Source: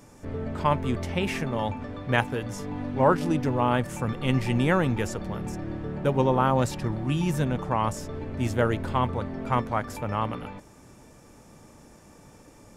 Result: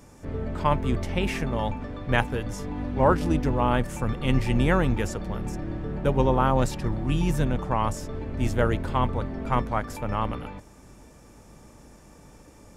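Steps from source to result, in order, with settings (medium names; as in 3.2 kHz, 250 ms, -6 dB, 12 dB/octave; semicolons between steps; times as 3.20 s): octave divider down 2 oct, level -1 dB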